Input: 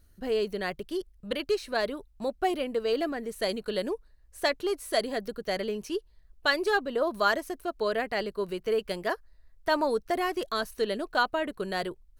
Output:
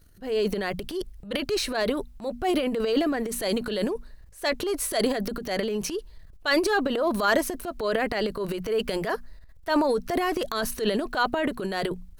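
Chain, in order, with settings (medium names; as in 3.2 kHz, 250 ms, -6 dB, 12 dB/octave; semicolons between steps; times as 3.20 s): hum notches 60/120/180/240 Hz; transient shaper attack -6 dB, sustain +11 dB; trim +3 dB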